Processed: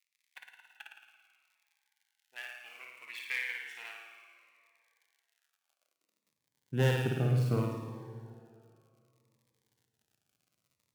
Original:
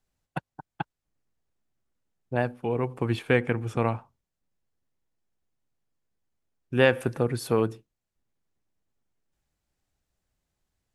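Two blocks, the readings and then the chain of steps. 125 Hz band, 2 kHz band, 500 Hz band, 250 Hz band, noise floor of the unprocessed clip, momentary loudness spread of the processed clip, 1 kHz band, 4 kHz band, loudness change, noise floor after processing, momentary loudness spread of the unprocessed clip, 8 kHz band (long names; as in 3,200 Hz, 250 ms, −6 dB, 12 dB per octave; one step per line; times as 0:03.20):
−1.5 dB, −7.0 dB, −12.5 dB, −9.0 dB, below −85 dBFS, 23 LU, −12.5 dB, −5.5 dB, −7.0 dB, below −85 dBFS, 17 LU, −6.0 dB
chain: gap after every zero crossing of 0.055 ms
mains-hum notches 60/120/180 Hz
flutter between parallel walls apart 9.5 metres, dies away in 1 s
surface crackle 86 per second −47 dBFS
tube saturation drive 15 dB, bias 0.6
high-pass filter sweep 2,200 Hz → 120 Hz, 0:05.31–0:06.41
dense smooth reverb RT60 2.6 s, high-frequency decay 0.8×, DRR 8 dB
phaser whose notches keep moving one way falling 0.65 Hz
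level −7 dB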